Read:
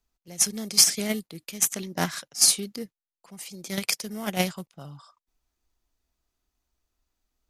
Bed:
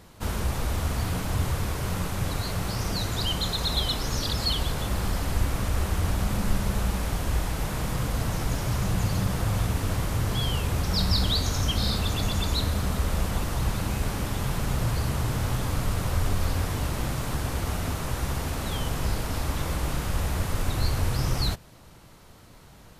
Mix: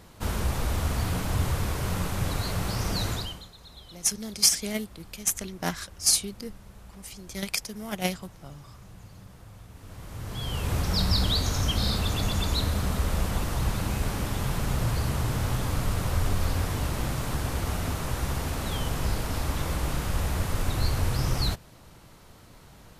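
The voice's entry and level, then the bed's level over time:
3.65 s, −3.0 dB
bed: 0:03.12 0 dB
0:03.51 −22 dB
0:09.68 −22 dB
0:10.72 −0.5 dB

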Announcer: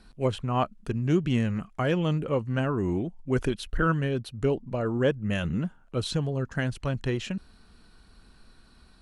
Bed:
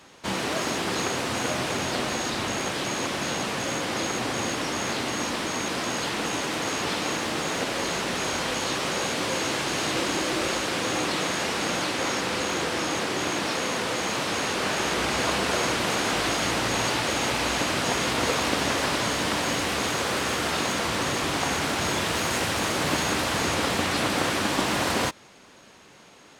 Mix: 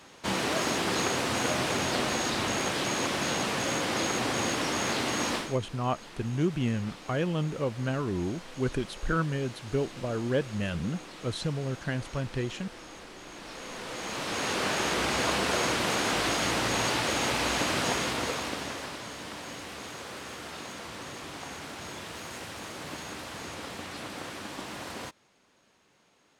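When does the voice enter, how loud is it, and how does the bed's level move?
5.30 s, −3.5 dB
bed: 0:05.36 −1 dB
0:05.59 −19 dB
0:13.25 −19 dB
0:14.52 −2.5 dB
0:17.86 −2.5 dB
0:19.01 −14.5 dB

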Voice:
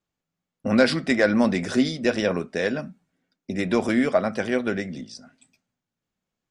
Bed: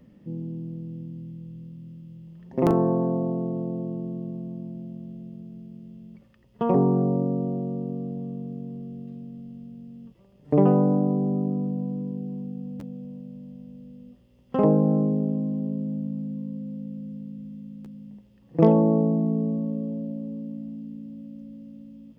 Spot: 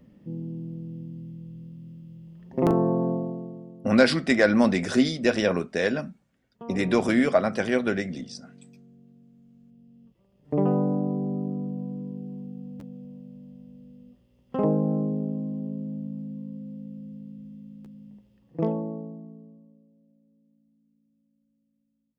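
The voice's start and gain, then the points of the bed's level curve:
3.20 s, 0.0 dB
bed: 0:03.11 −1 dB
0:03.77 −16 dB
0:09.34 −16 dB
0:10.74 −4 dB
0:18.36 −4 dB
0:19.92 −31 dB

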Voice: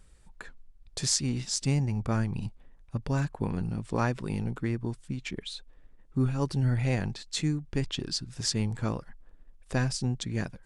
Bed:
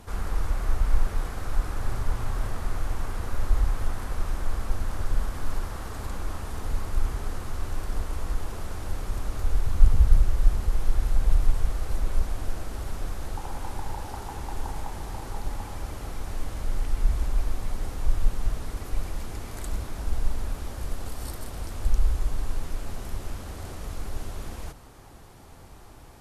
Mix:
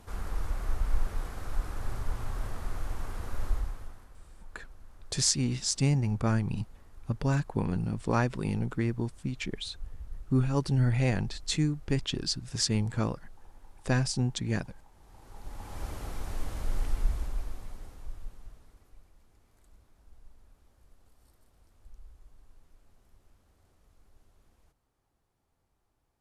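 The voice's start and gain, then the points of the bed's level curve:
4.15 s, +1.0 dB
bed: 0:03.49 −6 dB
0:04.17 −24.5 dB
0:14.93 −24.5 dB
0:15.83 −3 dB
0:16.87 −3 dB
0:19.10 −29 dB

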